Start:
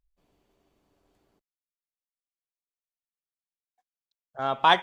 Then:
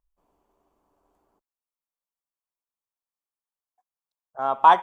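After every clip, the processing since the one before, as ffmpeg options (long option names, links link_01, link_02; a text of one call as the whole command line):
ffmpeg -i in.wav -af "equalizer=frequency=125:width_type=o:width=1:gain=-8,equalizer=frequency=1000:width_type=o:width=1:gain=10,equalizer=frequency=2000:width_type=o:width=1:gain=-6,equalizer=frequency=4000:width_type=o:width=1:gain=-9,volume=-1.5dB" out.wav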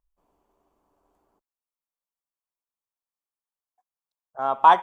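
ffmpeg -i in.wav -af anull out.wav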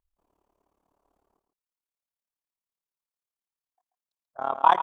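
ffmpeg -i in.wav -filter_complex "[0:a]tremolo=f=36:d=0.947,asplit=2[link_01][link_02];[link_02]aecho=0:1:136:0.316[link_03];[link_01][link_03]amix=inputs=2:normalize=0" out.wav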